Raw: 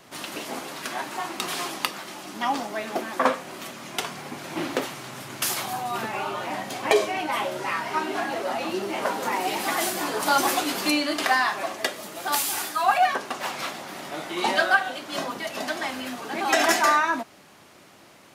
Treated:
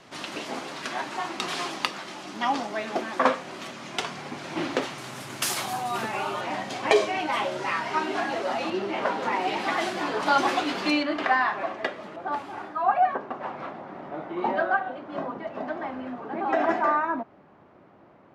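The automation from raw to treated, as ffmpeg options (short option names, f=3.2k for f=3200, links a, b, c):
-af "asetnsamples=n=441:p=0,asendcmd='4.98 lowpass f 11000;6.41 lowpass f 6400;8.7 lowpass f 3600;11.03 lowpass f 2100;12.16 lowpass f 1100',lowpass=6.1k"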